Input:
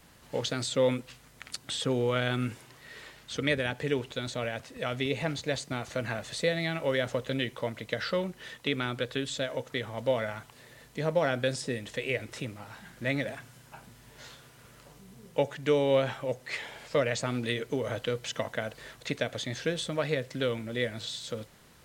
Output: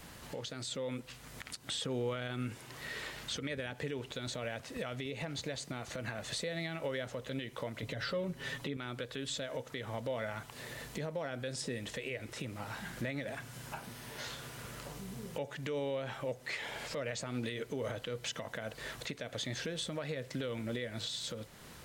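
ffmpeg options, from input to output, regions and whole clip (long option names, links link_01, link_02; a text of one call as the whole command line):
ffmpeg -i in.wav -filter_complex "[0:a]asettb=1/sr,asplit=3[link_01][link_02][link_03];[link_01]atrim=end=7.824[link_04];[link_02]atrim=start=7.82:end=8.77,asetpts=PTS-STARTPTS,afade=type=in:duration=0.004:curve=qsin,afade=type=out:start_time=0.946:duration=0.004:curve=qsin,lowshelf=frequency=430:gain=8,aecho=1:1:7.3:0.79,atrim=end_sample=41895[link_05];[link_03]atrim=start=8.766[link_06];[link_04][link_05]acrossfade=duration=0.004:curve1=hsin:curve2=qsin[link_07];[link_07][link_06]acrossfade=duration=0.004:curve1=qsin:curve2=hsin,asettb=1/sr,asplit=3[link_08][link_09][link_10];[link_08]atrim=end=13.784[link_11];[link_09]atrim=start=13.78:end=14.27,asetpts=PTS-STARTPTS,afade=type=in:duration=0.004:curve=qsin,afade=type=out:start_time=0.486:duration=0.004:curve=qsin,highpass=frequency=160:poles=1,bandreject=frequency=7300:width=8[link_12];[link_10]atrim=start=14.266[link_13];[link_11][link_12]acrossfade=duration=0.004:curve1=hsin:curve2=qsin[link_14];[link_14][link_13]acrossfade=duration=0.004:curve1=qsin:curve2=hsin,acompressor=threshold=-51dB:ratio=2,alimiter=level_in=12.5dB:limit=-24dB:level=0:latency=1:release=126,volume=-12.5dB,dynaudnorm=framelen=350:gausssize=5:maxgain=3dB,volume=6dB" out.wav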